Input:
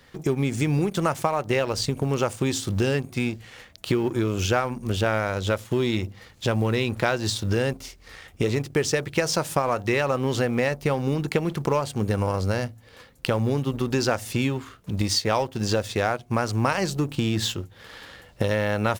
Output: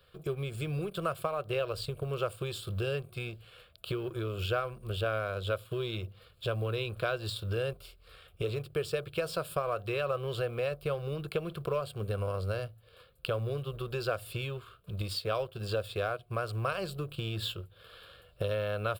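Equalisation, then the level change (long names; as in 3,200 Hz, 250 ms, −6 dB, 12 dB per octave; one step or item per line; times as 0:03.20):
phaser with its sweep stopped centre 1,300 Hz, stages 8
−6.5 dB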